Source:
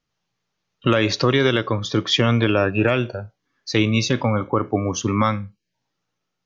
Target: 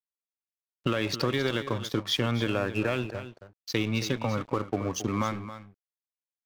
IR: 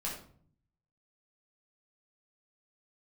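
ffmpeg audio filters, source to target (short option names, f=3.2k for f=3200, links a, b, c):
-filter_complex "[0:a]acompressor=threshold=-20dB:ratio=2.5,aeval=exprs='sgn(val(0))*max(abs(val(0))-0.0178,0)':c=same,asplit=2[a][b];[b]aecho=0:1:272:0.237[c];[a][c]amix=inputs=2:normalize=0,volume=-4dB"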